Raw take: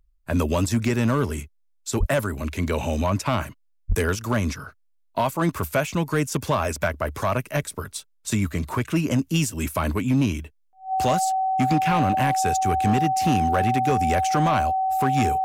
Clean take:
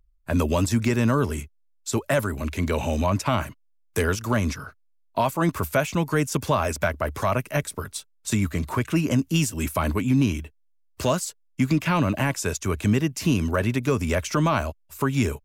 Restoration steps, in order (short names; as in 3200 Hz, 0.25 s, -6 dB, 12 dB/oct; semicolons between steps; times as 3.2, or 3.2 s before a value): clip repair -14 dBFS; notch 760 Hz, Q 30; 1.99–2.11 HPF 140 Hz 24 dB/oct; 3.88–4 HPF 140 Hz 24 dB/oct